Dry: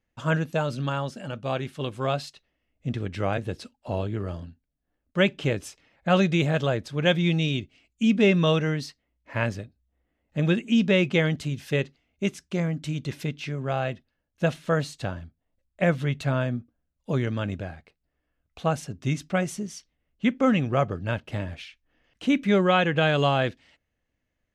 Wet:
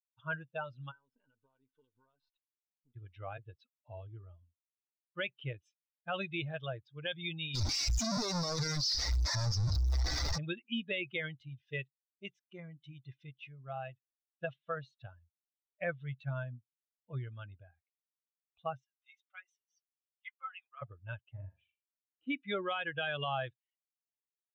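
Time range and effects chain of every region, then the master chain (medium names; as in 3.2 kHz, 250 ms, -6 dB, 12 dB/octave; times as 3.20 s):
0.91–2.96 s: partial rectifier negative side -12 dB + compression 20:1, threshold -40 dBFS + small resonant body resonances 270/430/930/1500 Hz, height 13 dB, ringing for 40 ms
7.55–10.38 s: one-bit comparator + resonant high shelf 3.8 kHz +8.5 dB, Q 3 + waveshaping leveller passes 3
18.77–20.82 s: Chebyshev high-pass 1.2 kHz + flange 1.3 Hz, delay 4.6 ms, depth 4.2 ms, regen +56%
21.32–22.27 s: low-pass 1 kHz 6 dB/octave + flutter echo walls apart 7 m, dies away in 0.52 s
whole clip: expander on every frequency bin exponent 2; FFT filter 130 Hz 0 dB, 180 Hz -15 dB, 1.3 kHz -2 dB, 2.9 kHz -1 dB, 5.5 kHz +2 dB, 9 kHz -23 dB; peak limiter -26 dBFS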